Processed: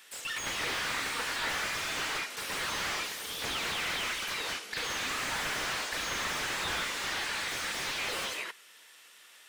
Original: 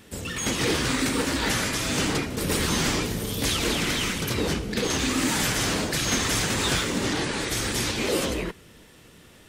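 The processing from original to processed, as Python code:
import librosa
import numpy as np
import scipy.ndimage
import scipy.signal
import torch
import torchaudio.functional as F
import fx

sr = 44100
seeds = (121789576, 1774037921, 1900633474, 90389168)

y = scipy.signal.sosfilt(scipy.signal.butter(2, 1200.0, 'highpass', fs=sr, output='sos'), x)
y = fx.slew_limit(y, sr, full_power_hz=74.0)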